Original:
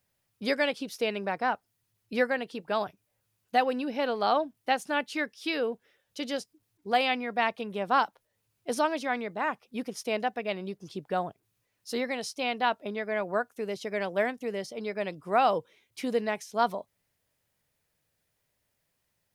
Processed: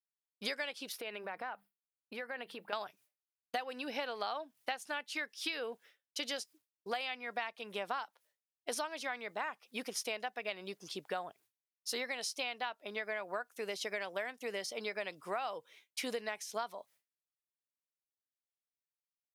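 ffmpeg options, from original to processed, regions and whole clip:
ffmpeg -i in.wav -filter_complex "[0:a]asettb=1/sr,asplit=3[link_01][link_02][link_03];[link_01]atrim=end=0.924[link_04];[link_02]atrim=start=0.92:end=2.73,asetpts=PTS-STARTPTS,afade=type=in:duration=0.004:curve=qsin,afade=type=out:start_time=1.806:duration=0.004:curve=qsin,equalizer=frequency=6300:width=1:gain=-14,bandreject=frequency=50:width_type=h:width=6,bandreject=frequency=100:width_type=h:width=6,bandreject=frequency=150:width_type=h:width=6,bandreject=frequency=200:width_type=h:width=6,acompressor=threshold=-36dB:ratio=10:attack=3.2:release=140:knee=1:detection=peak[link_05];[link_03]atrim=start=2.726[link_06];[link_04][link_05]acrossfade=duration=0.004:curve1=hsin:curve2=qsin[link_07];[link_07][link_06]acrossfade=duration=0.004:curve1=qsin:curve2=hsin,highpass=frequency=1300:poles=1,agate=range=-33dB:threshold=-58dB:ratio=3:detection=peak,acompressor=threshold=-40dB:ratio=12,volume=5.5dB" out.wav

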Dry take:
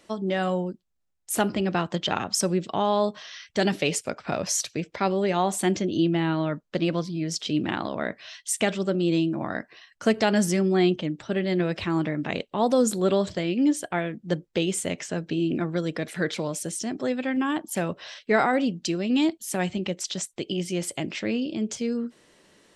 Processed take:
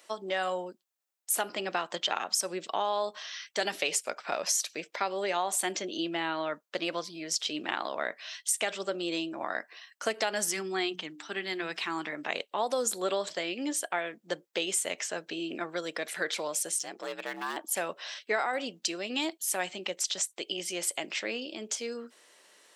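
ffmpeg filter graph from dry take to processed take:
ffmpeg -i in.wav -filter_complex "[0:a]asettb=1/sr,asplit=3[link_01][link_02][link_03];[link_01]atrim=end=10.494[link_04];[link_02]atrim=start=10.49:end=12.13,asetpts=PTS-STARTPTS,afade=type=in:duration=0.004:curve=qsin,afade=type=out:start_time=1.636:duration=0.004:curve=qsin,equalizer=frequency=570:width_type=o:width=0.39:gain=-14.5,bandreject=frequency=60:width_type=h:width=6,bandreject=frequency=120:width_type=h:width=6,bandreject=frequency=180:width_type=h:width=6,bandreject=frequency=240:width_type=h:width=6,bandreject=frequency=300:width_type=h:width=6[link_05];[link_03]atrim=start=12.126[link_06];[link_04][link_05]acrossfade=duration=0.004:curve1=hsin:curve2=qsin[link_07];[link_07][link_06]acrossfade=duration=0.004:curve1=qsin:curve2=hsin,asettb=1/sr,asplit=3[link_08][link_09][link_10];[link_08]atrim=end=16.784[link_11];[link_09]atrim=start=16.78:end=17.57,asetpts=PTS-STARTPTS,afade=type=in:duration=0.004:curve=qsin,afade=type=out:start_time=0.786:duration=0.004:curve=qsin,asoftclip=type=hard:threshold=-22.5dB,equalizer=frequency=160:width_type=o:width=0.66:gain=-13.5,aeval=exprs='val(0)*sin(2*PI*68*n/s)':channel_layout=same[link_12];[link_10]atrim=start=17.566[link_13];[link_11][link_12]acrossfade=duration=0.004:curve1=hsin:curve2=qsin[link_14];[link_14][link_13]acrossfade=duration=0.004:curve1=qsin:curve2=hsin,highpass=600,highshelf=frequency=9800:gain=9,acompressor=threshold=-25dB:ratio=6" out.wav

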